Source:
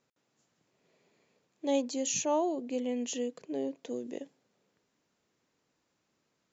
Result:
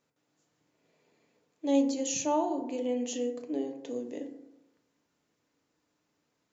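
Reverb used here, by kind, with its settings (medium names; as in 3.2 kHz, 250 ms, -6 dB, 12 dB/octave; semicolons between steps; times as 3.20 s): FDN reverb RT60 0.94 s, low-frequency decay 1×, high-frequency decay 0.4×, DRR 4 dB; trim -1.5 dB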